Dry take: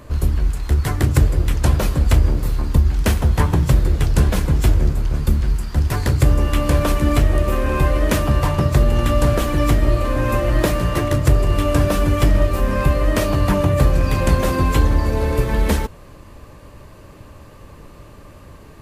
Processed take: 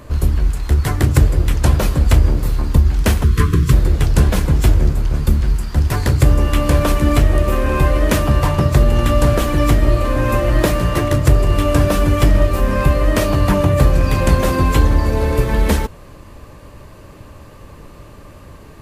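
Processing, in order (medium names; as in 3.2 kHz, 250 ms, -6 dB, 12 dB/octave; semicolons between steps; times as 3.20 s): spectral selection erased 3.23–3.72 s, 480–1000 Hz; trim +2.5 dB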